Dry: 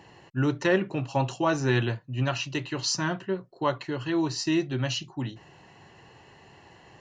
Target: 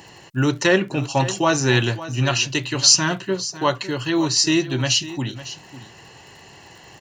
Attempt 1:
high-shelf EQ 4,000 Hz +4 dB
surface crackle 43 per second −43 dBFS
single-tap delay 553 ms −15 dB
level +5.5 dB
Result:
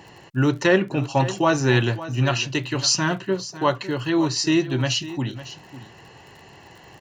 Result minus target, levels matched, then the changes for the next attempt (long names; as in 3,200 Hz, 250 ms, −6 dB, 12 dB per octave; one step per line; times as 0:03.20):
8,000 Hz band −5.5 dB
change: high-shelf EQ 4,000 Hz +15 dB